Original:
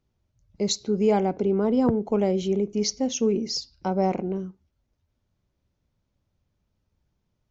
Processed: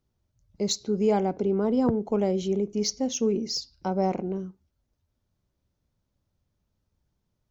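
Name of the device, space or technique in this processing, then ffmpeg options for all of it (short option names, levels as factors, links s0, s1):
exciter from parts: -filter_complex "[0:a]asplit=2[s0][s1];[s1]highpass=f=2200:w=0.5412,highpass=f=2200:w=1.3066,asoftclip=type=tanh:threshold=0.0398,volume=0.316[s2];[s0][s2]amix=inputs=2:normalize=0,volume=0.794"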